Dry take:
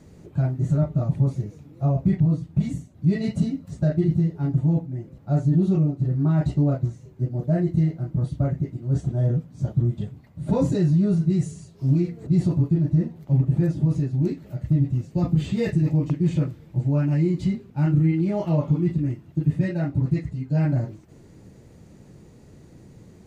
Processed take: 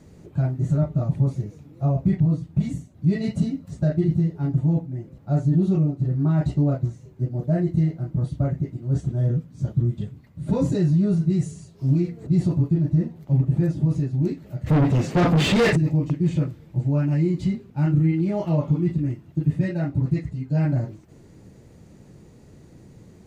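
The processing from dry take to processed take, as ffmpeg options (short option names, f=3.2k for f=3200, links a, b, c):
-filter_complex "[0:a]asettb=1/sr,asplit=3[a][b][c];[a]atrim=end=9.004[d];[b]atrim=start=9:end=10.66,asetpts=PTS-STARTPTS,afade=t=in:d=0.004:c=qsin,afade=t=out:st=1.656:d=0.004:c=qsin,equalizer=f=730:t=o:w=0.77:g=-5.5[e];[c]atrim=start=10.656[f];[d][e]acrossfade=d=0.004:c1=hsin:c2=qsin[g];[g][f]acrossfade=d=0.004:c1=qsin:c2=hsin,asplit=3[h][i][j];[h]afade=t=out:st=14.66:d=0.02[k];[i]asplit=2[l][m];[m]highpass=f=720:p=1,volume=32dB,asoftclip=type=tanh:threshold=-10.5dB[n];[l][n]amix=inputs=2:normalize=0,lowpass=f=3k:p=1,volume=-6dB,afade=t=in:st=14.66:d=0.02,afade=t=out:st=15.75:d=0.02[o];[j]afade=t=in:st=15.75:d=0.02[p];[k][o][p]amix=inputs=3:normalize=0"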